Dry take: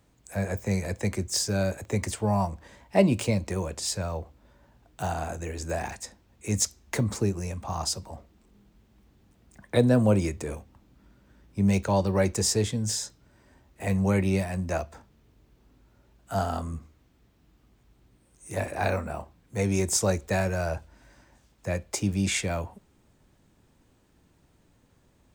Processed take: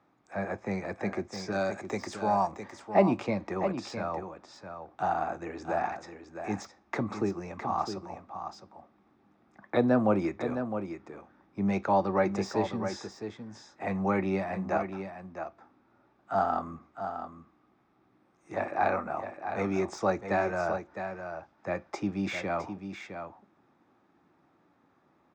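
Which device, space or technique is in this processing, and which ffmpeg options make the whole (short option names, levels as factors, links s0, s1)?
kitchen radio: -filter_complex "[0:a]asettb=1/sr,asplit=3[s0][s1][s2];[s0]atrim=end=1.524[s3];[s1]atrim=start=1.52:end=2.51,asetpts=PTS-STARTPTS,afade=t=in:d=0.004:c=qsin,afade=t=out:st=0.986:d=0.004:c=qsin,bass=f=250:g=-4,treble=f=4000:g=14[s4];[s2]atrim=start=2.506[s5];[s3][s4]acrossfade=d=0.004:c1=hsin:c2=qsin[s6];[s6][s5]acrossfade=d=0.004:c1=qsin:c2=hsin,highpass=210,equalizer=f=330:t=q:w=4:g=4,equalizer=f=470:t=q:w=4:g=-4,equalizer=f=800:t=q:w=4:g=7,equalizer=f=1200:t=q:w=4:g=9,equalizer=f=3000:t=q:w=4:g=-10,equalizer=f=4300:t=q:w=4:g=-8,lowpass=f=4400:w=0.5412,lowpass=f=4400:w=1.3066,deesser=1,equalizer=f=1000:w=7.4:g=-3,aecho=1:1:660:0.376,volume=0.841"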